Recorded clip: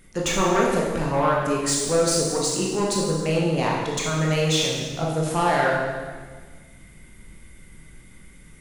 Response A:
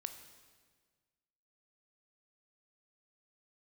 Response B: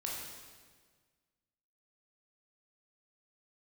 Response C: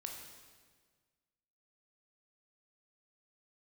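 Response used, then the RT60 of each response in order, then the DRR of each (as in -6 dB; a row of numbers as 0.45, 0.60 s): B; 1.6, 1.6, 1.6 s; 7.5, -3.5, 1.0 dB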